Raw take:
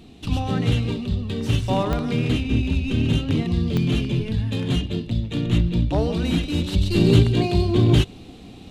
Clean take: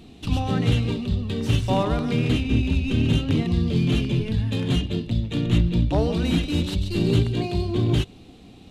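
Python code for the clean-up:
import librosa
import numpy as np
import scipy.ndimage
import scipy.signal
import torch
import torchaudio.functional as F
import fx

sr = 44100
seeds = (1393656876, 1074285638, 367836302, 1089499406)

y = fx.fix_declick_ar(x, sr, threshold=10.0)
y = fx.fix_level(y, sr, at_s=6.74, step_db=-5.0)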